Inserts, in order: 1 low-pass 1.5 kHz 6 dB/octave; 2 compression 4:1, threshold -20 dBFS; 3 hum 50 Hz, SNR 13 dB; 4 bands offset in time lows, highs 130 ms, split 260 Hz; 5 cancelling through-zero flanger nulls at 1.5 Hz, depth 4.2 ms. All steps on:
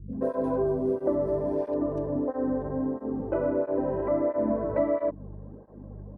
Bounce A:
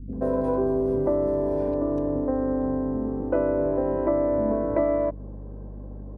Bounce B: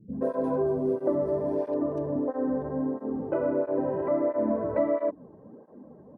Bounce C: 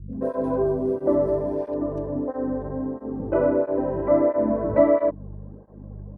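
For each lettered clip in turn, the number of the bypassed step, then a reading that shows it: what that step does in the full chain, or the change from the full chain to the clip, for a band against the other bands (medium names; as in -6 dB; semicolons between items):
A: 5, loudness change +3.0 LU; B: 3, 125 Hz band -2.0 dB; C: 2, mean gain reduction 2.5 dB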